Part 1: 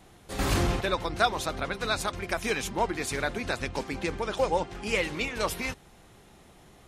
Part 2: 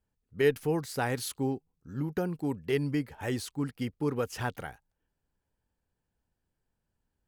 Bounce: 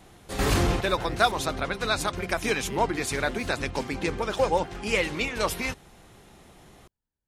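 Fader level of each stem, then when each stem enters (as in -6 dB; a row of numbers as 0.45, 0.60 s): +2.5, -9.0 dB; 0.00, 0.00 s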